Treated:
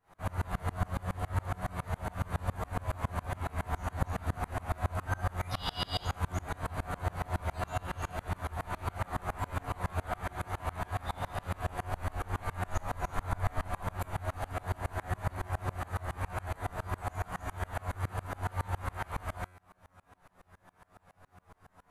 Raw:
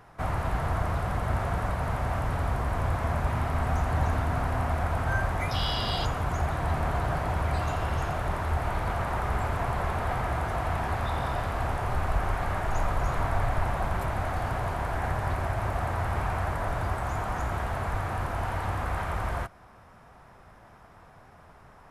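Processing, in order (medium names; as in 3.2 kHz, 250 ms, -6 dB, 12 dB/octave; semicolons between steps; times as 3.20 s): treble shelf 5.2 kHz +6.5 dB; band-stop 5.3 kHz, Q 7; feedback comb 91 Hz, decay 0.3 s, harmonics all, mix 90%; sawtooth tremolo in dB swelling 7.2 Hz, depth 29 dB; trim +8.5 dB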